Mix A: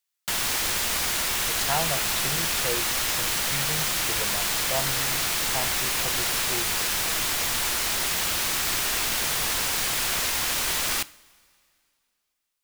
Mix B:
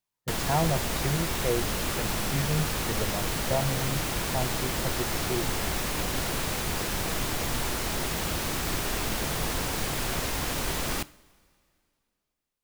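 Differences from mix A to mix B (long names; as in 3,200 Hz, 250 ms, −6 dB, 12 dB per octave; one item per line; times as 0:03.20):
speech: entry −1.20 s
master: add tilt shelving filter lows +8 dB, about 790 Hz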